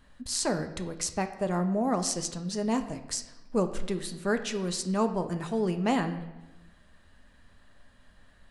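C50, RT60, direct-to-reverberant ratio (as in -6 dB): 11.0 dB, 1.0 s, 7.0 dB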